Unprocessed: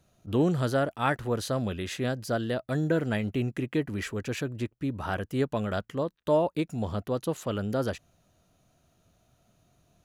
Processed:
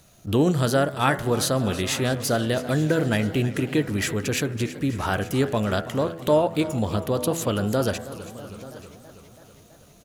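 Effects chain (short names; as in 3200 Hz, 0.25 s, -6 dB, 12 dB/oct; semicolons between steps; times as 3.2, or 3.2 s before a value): high shelf 4500 Hz +9 dB; de-hum 83.01 Hz, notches 27; in parallel at +2 dB: compressor, threshold -35 dBFS, peak gain reduction 15 dB; on the sum: crackle 270/s -51 dBFS; on a send: echo 0.883 s -19 dB; on the sum: warbling echo 0.325 s, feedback 66%, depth 106 cents, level -15.5 dB; gain +2.5 dB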